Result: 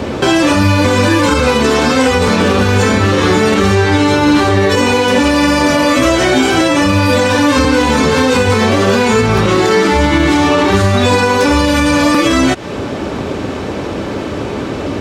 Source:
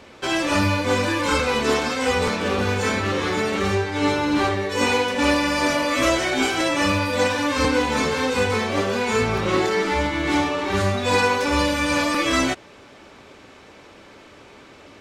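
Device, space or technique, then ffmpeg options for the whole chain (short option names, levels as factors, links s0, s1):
mastering chain: -filter_complex "[0:a]highpass=54,equalizer=f=2200:t=o:w=0.28:g=-3,acrossover=split=1000|4700[s0][s1][s2];[s0]acompressor=threshold=0.02:ratio=4[s3];[s1]acompressor=threshold=0.0282:ratio=4[s4];[s2]acompressor=threshold=0.0112:ratio=4[s5];[s3][s4][s5]amix=inputs=3:normalize=0,acompressor=threshold=0.0224:ratio=2.5,tiltshelf=f=640:g=6.5,alimiter=level_in=20:limit=0.891:release=50:level=0:latency=1,volume=0.891"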